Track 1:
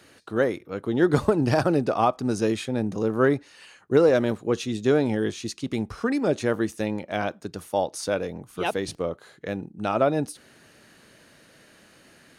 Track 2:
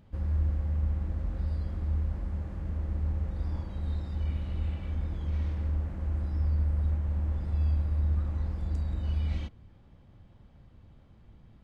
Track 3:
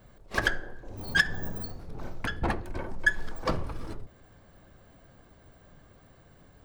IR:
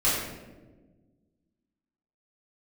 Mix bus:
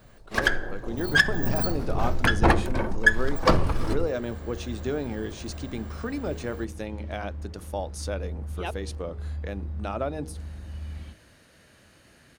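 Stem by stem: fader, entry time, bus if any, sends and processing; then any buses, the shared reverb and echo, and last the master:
-10.0 dB, 0.00 s, no send, compressor 1.5:1, threshold -32 dBFS, peak gain reduction 7 dB
-13.0 dB, 1.65 s, no send, HPF 51 Hz
+1.5 dB, 0.00 s, no send, vocal rider within 4 dB 0.5 s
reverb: off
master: AGC gain up to 7 dB; de-hum 52.34 Hz, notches 9

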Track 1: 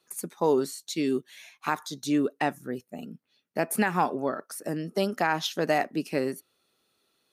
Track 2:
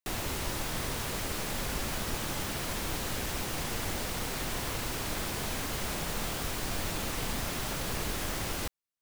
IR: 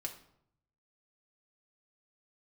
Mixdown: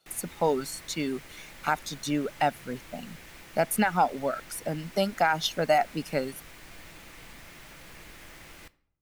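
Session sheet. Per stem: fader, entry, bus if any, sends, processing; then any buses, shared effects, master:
+0.5 dB, 0.00 s, no send, reverb removal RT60 0.83 s; comb 1.4 ms, depth 55%
-18.5 dB, 0.00 s, send -6.5 dB, bell 2100 Hz +8.5 dB 0.94 oct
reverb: on, RT60 0.70 s, pre-delay 3 ms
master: dry

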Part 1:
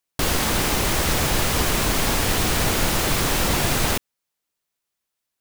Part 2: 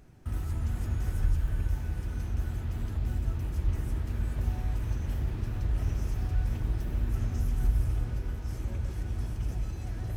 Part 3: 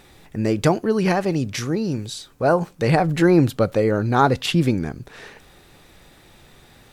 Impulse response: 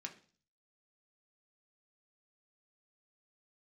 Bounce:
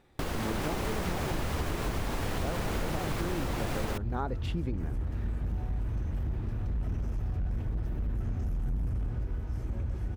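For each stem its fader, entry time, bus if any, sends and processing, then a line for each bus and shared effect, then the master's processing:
+1.0 dB, 0.00 s, no send, AGC; auto duck -10 dB, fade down 0.25 s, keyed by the third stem
+1.5 dB, 1.05 s, no send, hard clip -27 dBFS, distortion -11 dB
-12.0 dB, 0.00 s, no send, dry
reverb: off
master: high shelf 2600 Hz -12 dB; compressor 6:1, threshold -28 dBFS, peak gain reduction 10 dB

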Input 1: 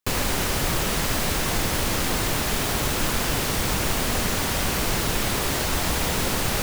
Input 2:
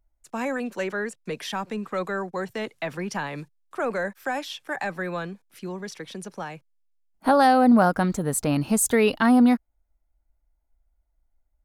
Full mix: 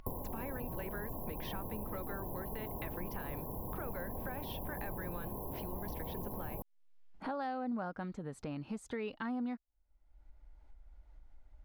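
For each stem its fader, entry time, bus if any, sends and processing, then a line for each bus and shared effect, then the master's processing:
-0.5 dB, 0.00 s, no send, FFT band-reject 1100–11000 Hz; auto duck -10 dB, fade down 0.20 s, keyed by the second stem
-12.0 dB, 0.00 s, no send, LPF 3500 Hz 12 dB/oct; notch 670 Hz, Q 12; upward compressor, threshold -22 dBFS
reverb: off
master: compressor 2:1, threshold -42 dBFS, peak gain reduction 9 dB

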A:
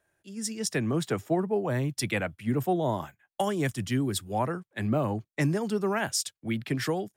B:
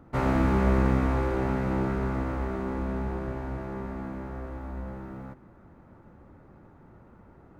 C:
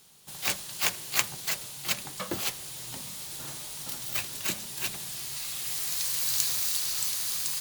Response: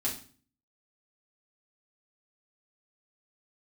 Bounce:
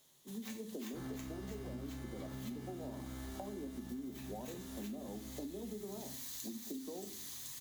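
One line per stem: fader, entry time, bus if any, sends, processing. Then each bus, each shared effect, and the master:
-2.0 dB, 0.00 s, no bus, send -8.5 dB, steep high-pass 190 Hz 72 dB/oct; compressor, threshold -32 dBFS, peak gain reduction 10.5 dB; Gaussian blur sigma 12 samples
-15.0 dB, 0.80 s, bus A, send -5.5 dB, sample-and-hold 17×
-13.5 dB, 0.00 s, bus A, send -9 dB, ripple EQ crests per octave 1.1, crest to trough 6 dB
bus A: 0.0 dB, compressor 2:1, threshold -59 dBFS, peak gain reduction 15.5 dB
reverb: on, RT60 0.40 s, pre-delay 4 ms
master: compressor 10:1, threshold -41 dBFS, peak gain reduction 14 dB

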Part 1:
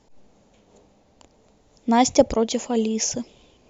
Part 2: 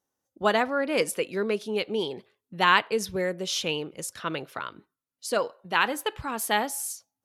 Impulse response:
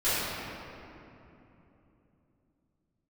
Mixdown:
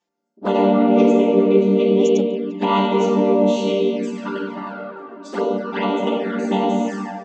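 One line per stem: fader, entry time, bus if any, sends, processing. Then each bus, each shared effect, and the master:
-7.5 dB, 0.00 s, no send, no echo send, sample leveller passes 1; band-pass 2400 Hz, Q 0.56; dB-linear tremolo 1.4 Hz, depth 23 dB
+3.0 dB, 0.00 s, send -6.5 dB, echo send -21.5 dB, chord vocoder minor triad, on G3; notches 60/120/180/240/300 Hz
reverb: on, RT60 3.1 s, pre-delay 3 ms
echo: feedback echo 0.312 s, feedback 50%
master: envelope flanger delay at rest 5.7 ms, full sweep at -15 dBFS

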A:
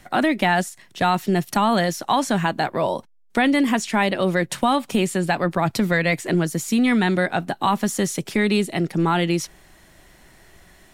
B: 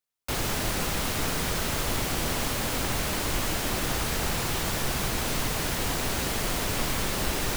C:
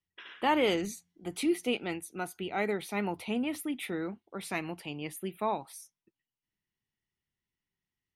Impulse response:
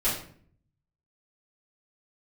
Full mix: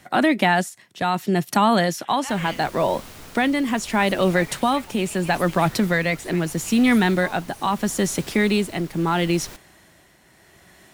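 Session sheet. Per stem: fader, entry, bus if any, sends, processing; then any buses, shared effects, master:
+2.0 dB, 0.00 s, no send, HPF 85 Hz
-11.5 dB, 2.00 s, no send, dry
+2.5 dB, 1.80 s, muted 2.64–3.78, no send, HPF 1200 Hz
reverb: off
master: tremolo triangle 0.76 Hz, depth 50%

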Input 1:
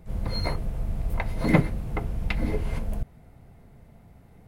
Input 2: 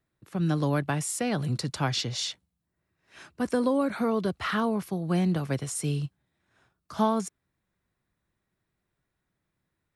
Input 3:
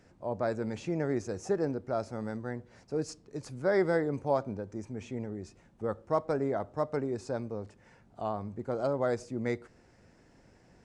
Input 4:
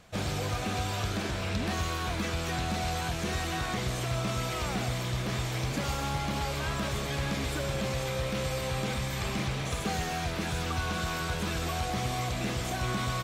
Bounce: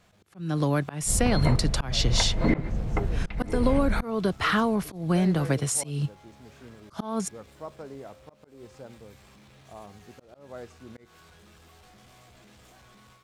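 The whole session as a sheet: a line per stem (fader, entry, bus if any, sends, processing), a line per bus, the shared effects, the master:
-5.5 dB, 1.00 s, no send, Gaussian blur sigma 1.8 samples
-1.0 dB, 0.00 s, no send, compressor 4:1, threshold -27 dBFS, peak gain reduction 8 dB
-19.0 dB, 1.50 s, no send, dry
-19.5 dB, 0.00 s, no send, overloaded stage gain 35 dB; resonator bank C#2 major, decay 0.22 s; fast leveller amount 100%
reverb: off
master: auto swell 0.219 s; AGC gain up to 8 dB

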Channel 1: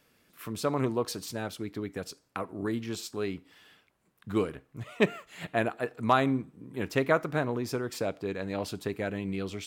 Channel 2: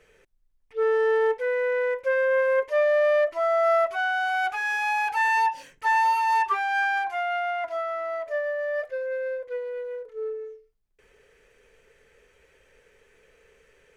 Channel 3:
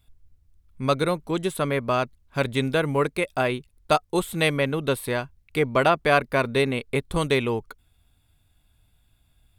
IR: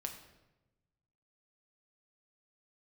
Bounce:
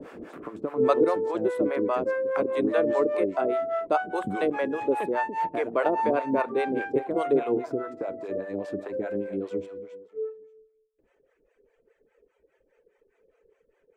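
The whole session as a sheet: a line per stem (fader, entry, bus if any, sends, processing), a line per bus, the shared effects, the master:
-9.0 dB, 0.00 s, send -8.5 dB, echo send -10.5 dB, three-band squash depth 100%
-8.5 dB, 0.00 s, send -7.5 dB, no echo send, reverb removal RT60 1.6 s
+2.0 dB, 0.00 s, send -23 dB, no echo send, HPF 300 Hz 12 dB/oct; auto duck -10 dB, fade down 1.45 s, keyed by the first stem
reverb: on, RT60 1.0 s, pre-delay 6 ms
echo: feedback echo 0.288 s, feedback 25%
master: EQ curve 150 Hz 0 dB, 310 Hz +14 dB, 660 Hz +9 dB, 4900 Hz -10 dB, 7500 Hz -6 dB, 13000 Hz -18 dB; harmonic tremolo 4.9 Hz, depth 100%, crossover 550 Hz

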